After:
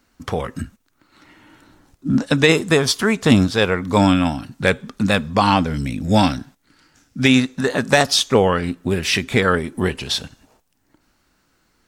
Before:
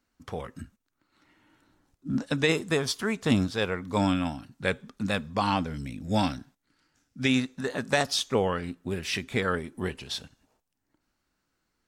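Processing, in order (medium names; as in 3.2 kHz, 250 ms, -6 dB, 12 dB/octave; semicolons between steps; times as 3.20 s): in parallel at -1 dB: compression 4:1, threshold -38 dBFS, peak gain reduction 16.5 dB; on the sum: overload inside the chain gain 12 dB; trim +9 dB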